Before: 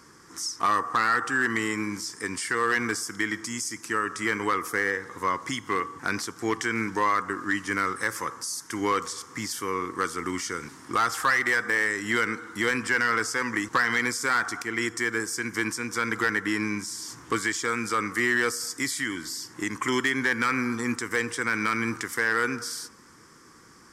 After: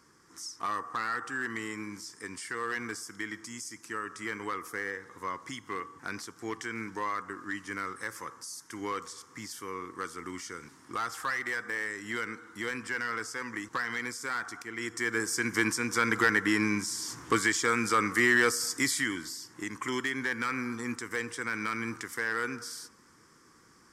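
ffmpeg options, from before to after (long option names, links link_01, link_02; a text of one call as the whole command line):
ffmpeg -i in.wav -af "volume=0.5dB,afade=type=in:start_time=14.78:duration=0.64:silence=0.316228,afade=type=out:start_time=18.94:duration=0.44:silence=0.421697" out.wav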